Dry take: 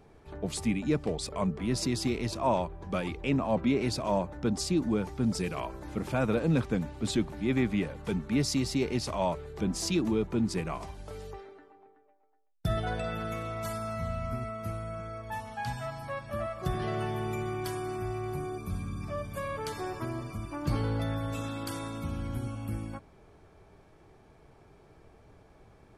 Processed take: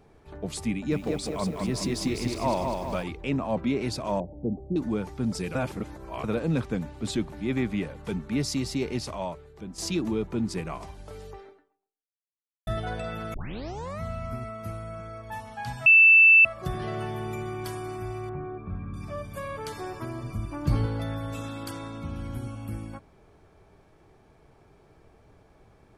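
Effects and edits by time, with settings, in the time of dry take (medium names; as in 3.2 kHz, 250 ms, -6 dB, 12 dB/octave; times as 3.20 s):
0.72–3.03 s: bit-crushed delay 200 ms, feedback 55%, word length 9-bit, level -4 dB
4.20–4.76 s: elliptic low-pass 720 Hz, stop band 60 dB
5.55–6.24 s: reverse
9.00–9.78 s: fade out quadratic, to -10 dB
11.49–12.67 s: fade out exponential
13.34 s: tape start 0.67 s
15.86–16.45 s: bleep 2.65 kHz -11.5 dBFS
17.08–17.64 s: echo throw 510 ms, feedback 15%, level -16.5 dB
18.29–18.94 s: low-pass 2.1 kHz 24 dB/octave
20.23–20.86 s: bass shelf 190 Hz +8 dB
21.71–22.16 s: distance through air 64 m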